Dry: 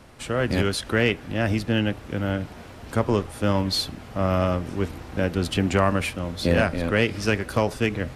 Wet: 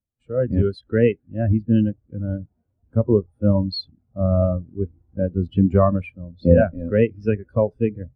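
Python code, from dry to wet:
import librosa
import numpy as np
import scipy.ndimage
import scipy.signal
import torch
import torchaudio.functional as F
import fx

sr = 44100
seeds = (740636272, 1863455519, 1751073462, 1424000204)

y = fx.spectral_expand(x, sr, expansion=2.5)
y = y * librosa.db_to_amplitude(5.5)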